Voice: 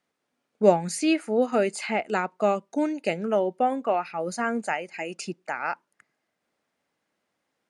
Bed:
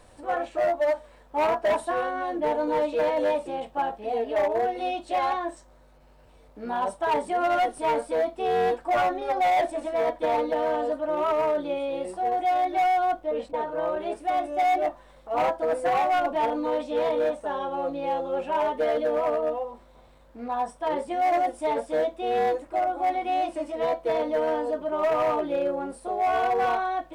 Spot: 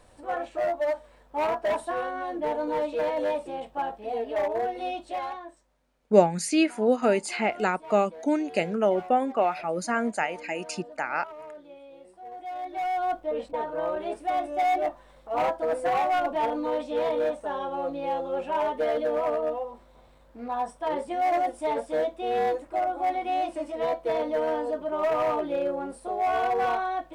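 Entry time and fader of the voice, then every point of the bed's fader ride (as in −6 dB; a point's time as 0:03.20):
5.50 s, +0.5 dB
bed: 0:04.99 −3 dB
0:05.79 −18.5 dB
0:12.16 −18.5 dB
0:13.16 −1.5 dB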